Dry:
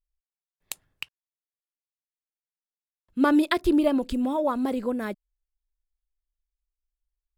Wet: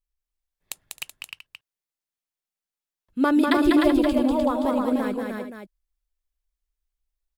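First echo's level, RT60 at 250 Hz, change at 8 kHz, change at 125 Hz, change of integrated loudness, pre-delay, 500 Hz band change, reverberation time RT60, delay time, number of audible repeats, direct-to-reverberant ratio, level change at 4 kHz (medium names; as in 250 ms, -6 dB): -3.5 dB, no reverb, no reading, no reading, +3.0 dB, no reverb, +3.0 dB, no reverb, 195 ms, 5, no reverb, +3.0 dB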